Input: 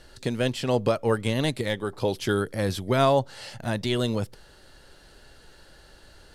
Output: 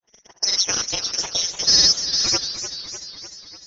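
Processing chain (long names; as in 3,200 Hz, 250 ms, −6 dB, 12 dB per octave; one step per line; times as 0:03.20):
voice inversion scrambler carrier 3,600 Hz
wrong playback speed 45 rpm record played at 78 rpm
parametric band 650 Hz +2.5 dB 1.6 octaves
backwards echo 274 ms −15.5 dB
low-pass that shuts in the quiet parts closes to 2,500 Hz, open at −12.5 dBFS
granular cloud 100 ms, grains 20 per second, pitch spread up and down by 0 semitones
delay with a high-pass on its return 444 ms, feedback 34%, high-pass 1,800 Hz, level −7 dB
noise gate −31 dBFS, range −32 dB
feedback echo with a swinging delay time 297 ms, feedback 63%, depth 134 cents, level −11 dB
level +6.5 dB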